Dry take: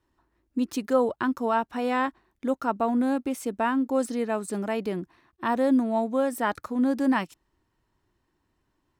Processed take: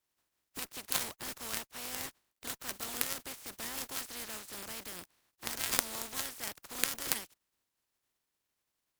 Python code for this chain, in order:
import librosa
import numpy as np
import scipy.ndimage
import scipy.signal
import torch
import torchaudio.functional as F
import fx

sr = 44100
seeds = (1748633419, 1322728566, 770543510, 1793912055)

y = fx.spec_flatten(x, sr, power=0.21)
y = fx.quant_dither(y, sr, seeds[0], bits=12, dither='none')
y = fx.cheby_harmonics(y, sr, harmonics=(3, 5, 7), levels_db=(-30, -28, -14), full_scale_db=0.0)
y = y * 10.0 ** (-1.5 / 20.0)